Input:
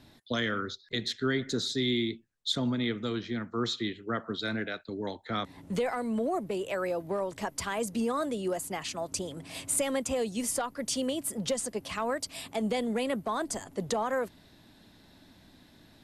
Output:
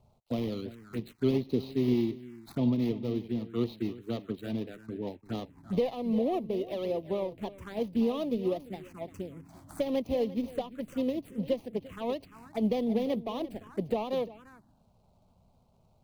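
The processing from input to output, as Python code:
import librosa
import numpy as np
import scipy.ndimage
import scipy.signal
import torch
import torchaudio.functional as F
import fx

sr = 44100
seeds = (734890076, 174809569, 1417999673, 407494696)

y = scipy.signal.medfilt(x, 25)
y = y + 10.0 ** (-12.5 / 20.0) * np.pad(y, (int(346 * sr / 1000.0), 0))[:len(y)]
y = fx.env_phaser(y, sr, low_hz=270.0, high_hz=1500.0, full_db=-30.5)
y = fx.upward_expand(y, sr, threshold_db=-41.0, expansion=1.5)
y = y * 10.0 ** (4.5 / 20.0)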